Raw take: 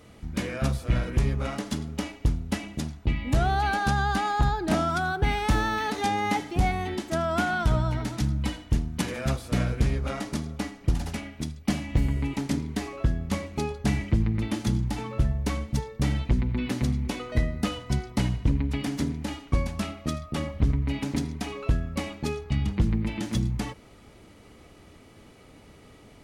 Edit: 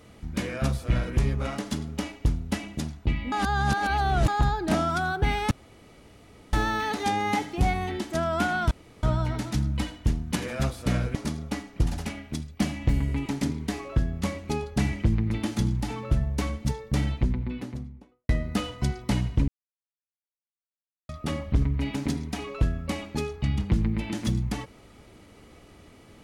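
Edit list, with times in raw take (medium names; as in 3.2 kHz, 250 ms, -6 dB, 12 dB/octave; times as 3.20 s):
3.32–4.28 s: reverse
5.51 s: insert room tone 1.02 s
7.69 s: insert room tone 0.32 s
9.81–10.23 s: delete
16.02–17.37 s: studio fade out
18.56–20.17 s: mute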